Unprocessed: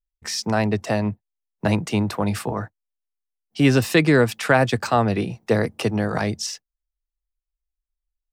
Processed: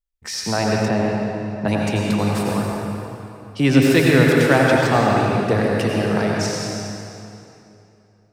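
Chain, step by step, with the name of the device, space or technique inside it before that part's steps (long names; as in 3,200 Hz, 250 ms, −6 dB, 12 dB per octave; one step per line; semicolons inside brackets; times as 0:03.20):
stairwell (convolution reverb RT60 2.8 s, pre-delay 79 ms, DRR −2.5 dB)
0:00.88–0:01.68: high-shelf EQ 4,200 Hz −10 dB
level −1 dB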